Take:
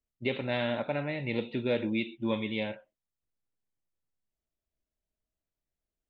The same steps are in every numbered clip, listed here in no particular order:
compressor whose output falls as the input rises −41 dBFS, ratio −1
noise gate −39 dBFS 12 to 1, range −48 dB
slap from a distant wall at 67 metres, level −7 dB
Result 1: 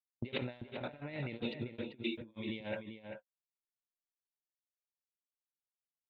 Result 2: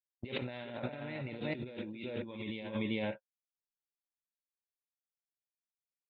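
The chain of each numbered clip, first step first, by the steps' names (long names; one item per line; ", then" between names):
compressor whose output falls as the input rises, then noise gate, then slap from a distant wall
noise gate, then slap from a distant wall, then compressor whose output falls as the input rises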